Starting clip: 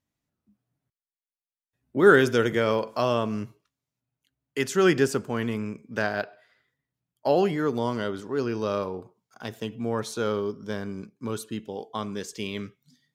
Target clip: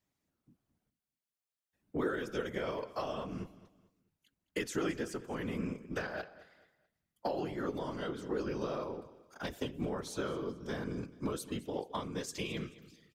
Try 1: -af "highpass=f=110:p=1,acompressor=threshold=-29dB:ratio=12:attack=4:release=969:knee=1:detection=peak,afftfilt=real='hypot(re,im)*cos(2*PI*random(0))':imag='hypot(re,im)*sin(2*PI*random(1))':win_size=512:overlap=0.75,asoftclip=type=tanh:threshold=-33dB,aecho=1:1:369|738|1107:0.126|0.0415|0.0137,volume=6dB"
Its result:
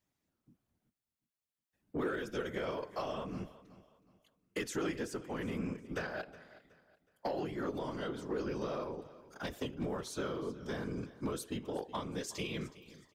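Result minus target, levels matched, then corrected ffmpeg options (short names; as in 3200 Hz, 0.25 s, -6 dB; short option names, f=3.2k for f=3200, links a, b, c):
echo 0.153 s late; soft clip: distortion +19 dB
-af "highpass=f=110:p=1,acompressor=threshold=-29dB:ratio=12:attack=4:release=969:knee=1:detection=peak,afftfilt=real='hypot(re,im)*cos(2*PI*random(0))':imag='hypot(re,im)*sin(2*PI*random(1))':win_size=512:overlap=0.75,asoftclip=type=tanh:threshold=-22dB,aecho=1:1:216|432|648:0.126|0.0415|0.0137,volume=6dB"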